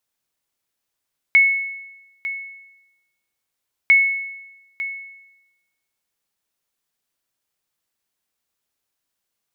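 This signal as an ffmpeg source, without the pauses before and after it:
-f lavfi -i "aevalsrc='0.447*(sin(2*PI*2200*mod(t,2.55))*exp(-6.91*mod(t,2.55)/1.01)+0.2*sin(2*PI*2200*max(mod(t,2.55)-0.9,0))*exp(-6.91*max(mod(t,2.55)-0.9,0)/1.01))':d=5.1:s=44100"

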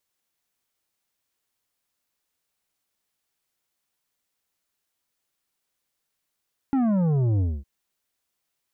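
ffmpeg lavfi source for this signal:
-f lavfi -i "aevalsrc='0.1*clip((0.91-t)/0.24,0,1)*tanh(2.82*sin(2*PI*280*0.91/log(65/280)*(exp(log(65/280)*t/0.91)-1)))/tanh(2.82)':d=0.91:s=44100"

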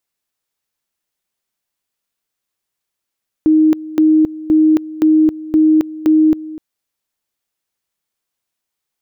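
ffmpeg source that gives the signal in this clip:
-f lavfi -i "aevalsrc='pow(10,(-7-18*gte(mod(t,0.52),0.27))/20)*sin(2*PI*312*t)':d=3.12:s=44100"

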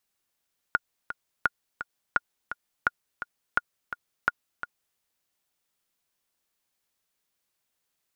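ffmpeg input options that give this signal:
-f lavfi -i "aevalsrc='pow(10,(-8-11.5*gte(mod(t,2*60/170),60/170))/20)*sin(2*PI*1430*mod(t,60/170))*exp(-6.91*mod(t,60/170)/0.03)':d=4.23:s=44100"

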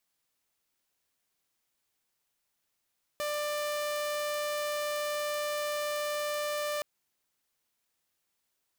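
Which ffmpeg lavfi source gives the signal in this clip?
-f lavfi -i "aevalsrc='0.0398*(2*mod(593*t,1)-1)':d=3.62:s=44100"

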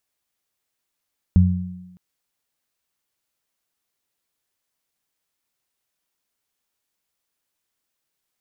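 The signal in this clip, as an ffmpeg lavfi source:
-f lavfi -i "aevalsrc='0.355*pow(10,-3*t/0.72)*sin(2*PI*90.5*t)+0.224*pow(10,-3*t/1.11)*sin(2*PI*181*t)':d=0.61:s=44100"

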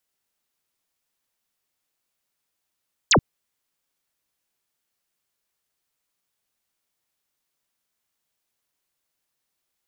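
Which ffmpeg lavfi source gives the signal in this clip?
-f lavfi -i "aevalsrc='0.237*clip(t/0.002,0,1)*clip((0.08-t)/0.002,0,1)*sin(2*PI*8200*0.08/log(88/8200)*(exp(log(88/8200)*t/0.08)-1))':d=0.08:s=44100"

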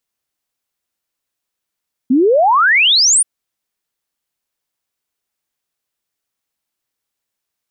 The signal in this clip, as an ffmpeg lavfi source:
-f lavfi -i "aevalsrc='0.398*clip(min(t,1.13-t)/0.01,0,1)*sin(2*PI*240*1.13/log(9900/240)*(exp(log(9900/240)*t/1.13)-1))':d=1.13:s=44100"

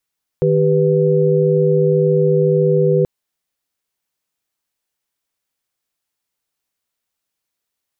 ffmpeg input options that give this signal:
-f lavfi -i "aevalsrc='0.168*(sin(2*PI*155.56*t)+sin(2*PI*392*t)+sin(2*PI*493.88*t))':d=2.63:s=44100"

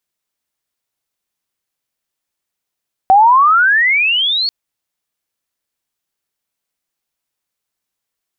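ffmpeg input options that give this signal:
-f lavfi -i "aevalsrc='pow(10,(-4-9.5*t/1.39)/20)*sin(2*PI*749*1.39/(31*log(2)/12)*(exp(31*log(2)/12*t/1.39)-1))':d=1.39:s=44100"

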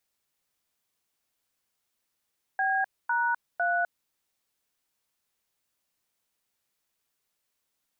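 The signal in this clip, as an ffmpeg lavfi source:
-f lavfi -i "aevalsrc='0.0501*clip(min(mod(t,0.503),0.254-mod(t,0.503))/0.002,0,1)*(eq(floor(t/0.503),0)*(sin(2*PI*770*mod(t,0.503))+sin(2*PI*1633*mod(t,0.503)))+eq(floor(t/0.503),1)*(sin(2*PI*941*mod(t,0.503))+sin(2*PI*1477*mod(t,0.503)))+eq(floor(t/0.503),2)*(sin(2*PI*697*mod(t,0.503))+sin(2*PI*1477*mod(t,0.503))))':d=1.509:s=44100"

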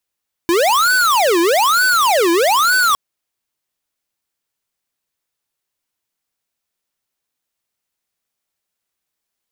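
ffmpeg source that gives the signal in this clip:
-f lavfi -i "aevalsrc='0.211*(2*lt(mod((922*t-588/(2*PI*1.1)*sin(2*PI*1.1*t)),1),0.5)-1)':d=2.46:s=44100"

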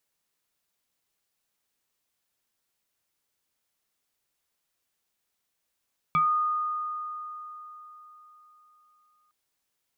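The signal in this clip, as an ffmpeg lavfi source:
-f lavfi -i "aevalsrc='0.112*pow(10,-3*t/4.03)*sin(2*PI*1230*t+0.81*pow(10,-3*t/0.21)*sin(2*PI*0.87*1230*t))':d=3.16:s=44100"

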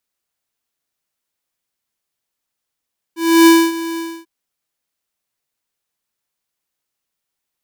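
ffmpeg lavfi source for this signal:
-f lavfi -i "aevalsrc='0.473*(2*lt(mod(331*t,1),0.5)-1)':d=1.093:s=44100,afade=t=in:d=0.305,afade=t=out:st=0.305:d=0.252:silence=0.15,afade=t=out:st=0.82:d=0.273"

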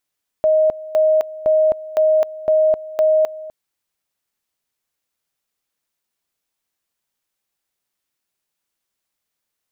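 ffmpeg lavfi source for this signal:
-f lavfi -i "aevalsrc='pow(10,(-11-18*gte(mod(t,0.51),0.26))/20)*sin(2*PI*625*t)':d=3.06:s=44100"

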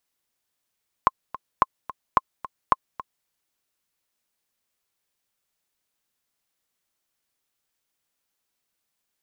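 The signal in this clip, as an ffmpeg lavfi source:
-f lavfi -i "aevalsrc='pow(10,(-3-16.5*gte(mod(t,2*60/218),60/218))/20)*sin(2*PI*1060*mod(t,60/218))*exp(-6.91*mod(t,60/218)/0.03)':d=2.2:s=44100"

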